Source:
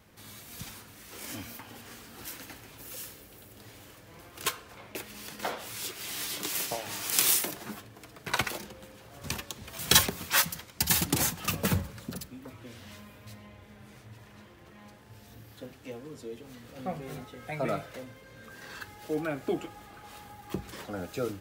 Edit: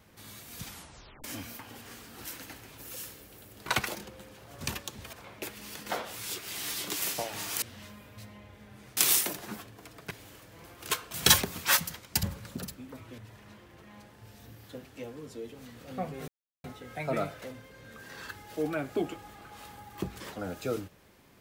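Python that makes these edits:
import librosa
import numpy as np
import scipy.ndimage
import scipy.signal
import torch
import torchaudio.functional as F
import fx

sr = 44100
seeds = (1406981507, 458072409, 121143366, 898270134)

y = fx.edit(x, sr, fx.tape_stop(start_s=0.68, length_s=0.56),
    fx.swap(start_s=3.66, length_s=1.0, other_s=8.29, other_length_s=1.47),
    fx.cut(start_s=10.88, length_s=0.88),
    fx.move(start_s=12.71, length_s=1.35, to_s=7.15),
    fx.insert_silence(at_s=17.16, length_s=0.36), tone=tone)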